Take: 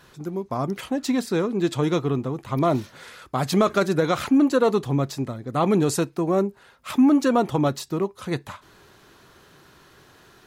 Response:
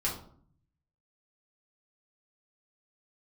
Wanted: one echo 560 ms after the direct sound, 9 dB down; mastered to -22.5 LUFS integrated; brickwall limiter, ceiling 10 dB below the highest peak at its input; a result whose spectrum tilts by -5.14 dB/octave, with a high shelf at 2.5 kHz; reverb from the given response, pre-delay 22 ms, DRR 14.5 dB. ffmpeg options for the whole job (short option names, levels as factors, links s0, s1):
-filter_complex "[0:a]highshelf=f=2500:g=7,alimiter=limit=0.15:level=0:latency=1,aecho=1:1:560:0.355,asplit=2[s0][s1];[1:a]atrim=start_sample=2205,adelay=22[s2];[s1][s2]afir=irnorm=-1:irlink=0,volume=0.1[s3];[s0][s3]amix=inputs=2:normalize=0,volume=1.5"